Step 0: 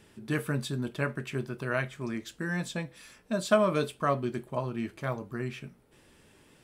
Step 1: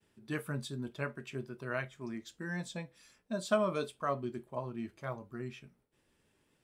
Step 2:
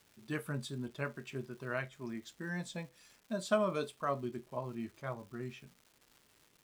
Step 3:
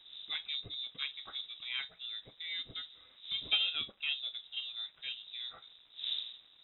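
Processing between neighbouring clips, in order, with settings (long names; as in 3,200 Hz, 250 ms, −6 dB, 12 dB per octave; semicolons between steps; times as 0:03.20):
downward expander −56 dBFS; noise reduction from a noise print of the clip's start 6 dB; level −6 dB
surface crackle 450 per second −51 dBFS; level −1 dB
gain on one half-wave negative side −3 dB; wind on the microphone 290 Hz −51 dBFS; voice inversion scrambler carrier 3,800 Hz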